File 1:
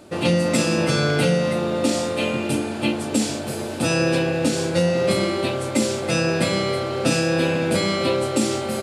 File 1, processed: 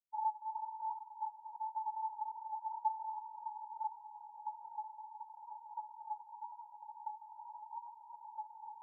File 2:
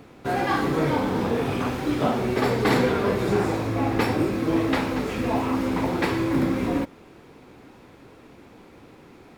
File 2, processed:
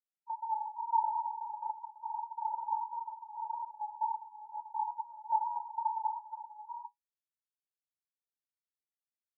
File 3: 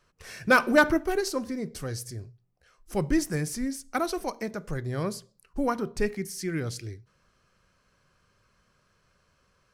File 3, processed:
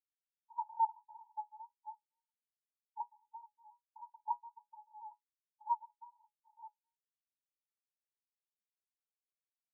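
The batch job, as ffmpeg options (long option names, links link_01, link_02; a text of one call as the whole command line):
ffmpeg -i in.wav -af "afftfilt=real='re*gte(hypot(re,im),0.0631)':imag='im*gte(hypot(re,im),0.0631)':win_size=1024:overlap=0.75,afwtdn=0.0282,acompressor=threshold=-27dB:ratio=3,asuperpass=centerf=900:order=20:qfactor=8,volume=9dB" out.wav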